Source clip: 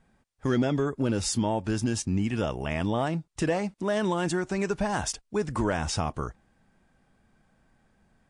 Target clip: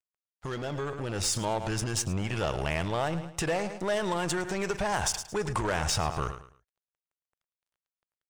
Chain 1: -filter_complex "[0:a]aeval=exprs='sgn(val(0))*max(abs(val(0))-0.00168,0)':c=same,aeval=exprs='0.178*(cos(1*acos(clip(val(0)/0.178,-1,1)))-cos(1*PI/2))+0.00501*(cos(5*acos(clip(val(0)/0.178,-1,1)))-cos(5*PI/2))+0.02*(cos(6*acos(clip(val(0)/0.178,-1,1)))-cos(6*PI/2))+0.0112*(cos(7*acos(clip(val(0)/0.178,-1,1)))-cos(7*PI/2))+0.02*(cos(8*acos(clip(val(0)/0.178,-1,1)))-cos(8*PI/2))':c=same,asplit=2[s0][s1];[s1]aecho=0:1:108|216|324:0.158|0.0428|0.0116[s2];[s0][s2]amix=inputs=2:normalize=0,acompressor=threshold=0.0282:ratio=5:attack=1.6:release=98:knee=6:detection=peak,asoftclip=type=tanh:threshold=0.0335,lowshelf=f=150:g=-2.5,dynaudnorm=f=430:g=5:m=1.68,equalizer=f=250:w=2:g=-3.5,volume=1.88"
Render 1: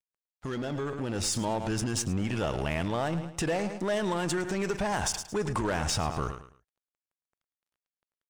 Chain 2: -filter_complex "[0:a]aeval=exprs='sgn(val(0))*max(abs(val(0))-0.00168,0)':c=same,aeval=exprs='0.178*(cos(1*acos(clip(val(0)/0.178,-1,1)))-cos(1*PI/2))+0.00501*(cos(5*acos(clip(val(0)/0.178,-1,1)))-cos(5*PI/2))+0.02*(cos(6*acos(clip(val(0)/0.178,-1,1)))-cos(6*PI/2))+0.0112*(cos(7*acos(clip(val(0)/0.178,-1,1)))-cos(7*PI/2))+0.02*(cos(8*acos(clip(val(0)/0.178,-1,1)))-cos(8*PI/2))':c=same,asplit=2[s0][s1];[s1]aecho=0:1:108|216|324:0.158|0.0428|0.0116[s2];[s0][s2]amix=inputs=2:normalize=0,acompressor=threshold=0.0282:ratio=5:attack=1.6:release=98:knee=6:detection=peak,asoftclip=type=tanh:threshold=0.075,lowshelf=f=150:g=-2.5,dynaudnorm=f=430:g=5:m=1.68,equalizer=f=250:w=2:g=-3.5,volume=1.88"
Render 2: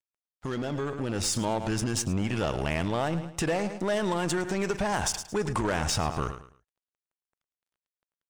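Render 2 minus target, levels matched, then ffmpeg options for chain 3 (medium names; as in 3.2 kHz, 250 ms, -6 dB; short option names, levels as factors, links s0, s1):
250 Hz band +3.5 dB
-filter_complex "[0:a]aeval=exprs='sgn(val(0))*max(abs(val(0))-0.00168,0)':c=same,aeval=exprs='0.178*(cos(1*acos(clip(val(0)/0.178,-1,1)))-cos(1*PI/2))+0.00501*(cos(5*acos(clip(val(0)/0.178,-1,1)))-cos(5*PI/2))+0.02*(cos(6*acos(clip(val(0)/0.178,-1,1)))-cos(6*PI/2))+0.0112*(cos(7*acos(clip(val(0)/0.178,-1,1)))-cos(7*PI/2))+0.02*(cos(8*acos(clip(val(0)/0.178,-1,1)))-cos(8*PI/2))':c=same,asplit=2[s0][s1];[s1]aecho=0:1:108|216|324:0.158|0.0428|0.0116[s2];[s0][s2]amix=inputs=2:normalize=0,acompressor=threshold=0.0282:ratio=5:attack=1.6:release=98:knee=6:detection=peak,asoftclip=type=tanh:threshold=0.075,lowshelf=f=150:g=-2.5,dynaudnorm=f=430:g=5:m=1.68,equalizer=f=250:w=2:g=-12,volume=1.88"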